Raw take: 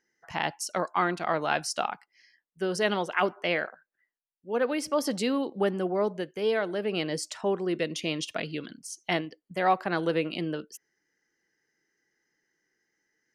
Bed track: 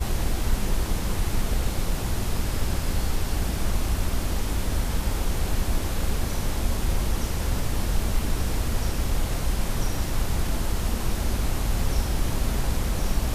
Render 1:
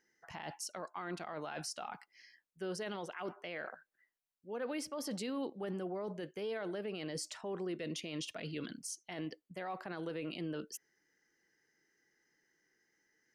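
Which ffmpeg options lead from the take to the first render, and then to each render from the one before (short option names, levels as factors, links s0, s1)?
-af "areverse,acompressor=threshold=0.0224:ratio=12,areverse,alimiter=level_in=2.51:limit=0.0631:level=0:latency=1:release=25,volume=0.398"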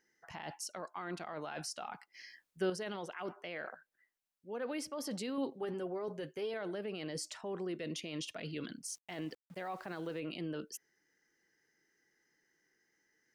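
-filter_complex "[0:a]asettb=1/sr,asplit=3[s0][s1][s2];[s0]atrim=end=2.144[s3];[s1]atrim=start=2.14:end=2.7,asetpts=PTS-STARTPTS,afade=t=in:d=0.004:c=qsin,afade=t=out:st=0.556:d=0.004:c=qsin,acontrast=90[s4];[s2]atrim=start=2.696[s5];[s3][s4]acrossfade=d=0.004:c1=hsin:c2=qsin[s6];[s6][s5]acrossfade=d=0.004:c1=qsin:c2=hsin,asettb=1/sr,asplit=3[s7][s8][s9];[s7]atrim=end=5.374[s10];[s8]atrim=start=5.37:end=6.54,asetpts=PTS-STARTPTS,afade=t=in:d=0.004:c=qsin,afade=t=out:st=1.166:d=0.004:c=qsin,aecho=1:1:7.5:0.52,atrim=end_sample=51597[s11];[s9]atrim=start=6.536[s12];[s10][s11]acrossfade=d=0.004:c1=hsin:c2=qsin[s13];[s13][s12]acrossfade=d=0.004:c1=qsin:c2=hsin,asplit=3[s14][s15][s16];[s14]afade=t=out:st=8.87:d=0.02[s17];[s15]aeval=exprs='val(0)*gte(abs(val(0)),0.00126)':c=same,afade=t=in:st=8.87:d=0.02,afade=t=out:st=10.19:d=0.02[s18];[s16]afade=t=in:st=10.19:d=0.02[s19];[s17][s18][s19]amix=inputs=3:normalize=0"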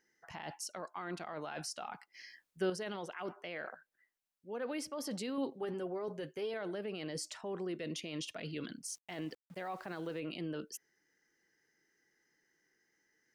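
-af anull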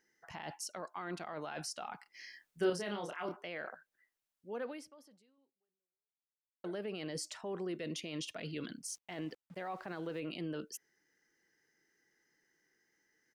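-filter_complex "[0:a]asplit=3[s0][s1][s2];[s0]afade=t=out:st=2.05:d=0.02[s3];[s1]asplit=2[s4][s5];[s5]adelay=29,volume=0.668[s6];[s4][s6]amix=inputs=2:normalize=0,afade=t=in:st=2.05:d=0.02,afade=t=out:st=3.36:d=0.02[s7];[s2]afade=t=in:st=3.36:d=0.02[s8];[s3][s7][s8]amix=inputs=3:normalize=0,asettb=1/sr,asplit=3[s9][s10][s11];[s9]atrim=end=8.974[s12];[s10]atrim=start=8.97:end=10.14,asetpts=PTS-STARTPTS,afade=t=in:d=0.004:c=qsin,afade=t=out:st=1.166:d=0.004:c=qsin,highshelf=f=6700:g=-8.5[s13];[s11]atrim=start=10.136[s14];[s12][s13]acrossfade=d=0.004:c1=hsin:c2=qsin[s15];[s15][s14]acrossfade=d=0.004:c1=qsin:c2=hsin,asplit=2[s16][s17];[s16]atrim=end=6.64,asetpts=PTS-STARTPTS,afade=t=out:st=4.61:d=2.03:c=exp[s18];[s17]atrim=start=6.64,asetpts=PTS-STARTPTS,afade=t=in:d=0.004:c=hsin[s19];[s18][s19]concat=n=2:v=0:a=1"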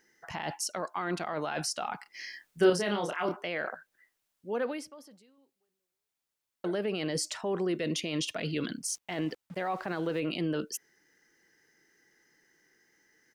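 -af "volume=2.82"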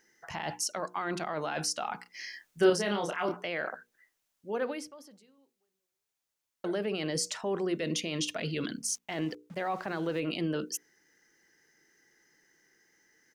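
-af "equalizer=f=6300:t=o:w=0.4:g=3,bandreject=f=60:t=h:w=6,bandreject=f=120:t=h:w=6,bandreject=f=180:t=h:w=6,bandreject=f=240:t=h:w=6,bandreject=f=300:t=h:w=6,bandreject=f=360:t=h:w=6,bandreject=f=420:t=h:w=6,bandreject=f=480:t=h:w=6"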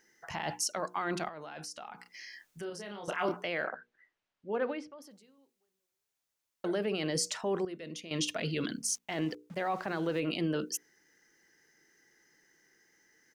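-filter_complex "[0:a]asettb=1/sr,asplit=3[s0][s1][s2];[s0]atrim=end=1.284[s3];[s1]atrim=start=1.28:end=3.08,asetpts=PTS-STARTPTS,afade=t=in:d=0.004:c=qsin,afade=t=out:st=1.796:d=0.004:c=qsin,acompressor=threshold=0.00501:ratio=2.5:attack=3.2:release=140:knee=1:detection=peak[s4];[s2]atrim=start=3.076[s5];[s3][s4]acrossfade=d=0.004:c1=hsin:c2=qsin[s6];[s6][s5]acrossfade=d=0.004:c1=qsin:c2=hsin,asettb=1/sr,asplit=3[s7][s8][s9];[s7]atrim=end=3.654[s10];[s8]atrim=start=3.65:end=5.02,asetpts=PTS-STARTPTS,afade=t=in:d=0.004:c=qsin,afade=t=out:st=1.366:d=0.004:c=qsin,lowpass=3100[s11];[s9]atrim=start=5.016[s12];[s10][s11]acrossfade=d=0.004:c1=hsin:c2=qsin[s13];[s13][s12]acrossfade=d=0.004:c1=qsin:c2=hsin,asplit=3[s14][s15][s16];[s14]atrim=end=7.652[s17];[s15]atrim=start=7.648:end=8.112,asetpts=PTS-STARTPTS,volume=0.282[s18];[s16]atrim=start=8.108[s19];[s17][s18]acrossfade=d=0.004:c1=hsin:c2=hsin[s20];[s20][s19]acrossfade=d=0.004:c1=hsin:c2=hsin"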